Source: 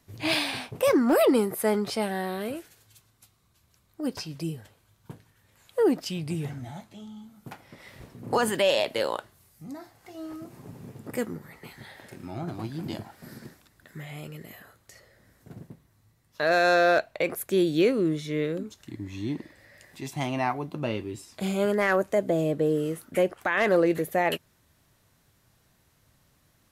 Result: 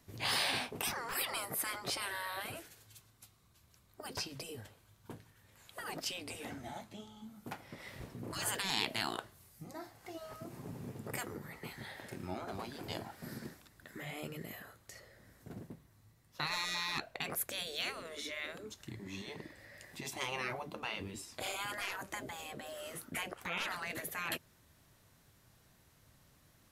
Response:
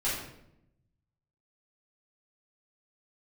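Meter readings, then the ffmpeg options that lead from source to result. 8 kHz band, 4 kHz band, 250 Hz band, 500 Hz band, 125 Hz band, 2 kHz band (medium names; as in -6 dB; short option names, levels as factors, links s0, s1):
-1.5 dB, -3.5 dB, -19.0 dB, -21.0 dB, -13.0 dB, -9.0 dB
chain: -af "afftfilt=real='re*lt(hypot(re,im),0.0891)':imag='im*lt(hypot(re,im),0.0891)':win_size=1024:overlap=0.75,volume=0.891"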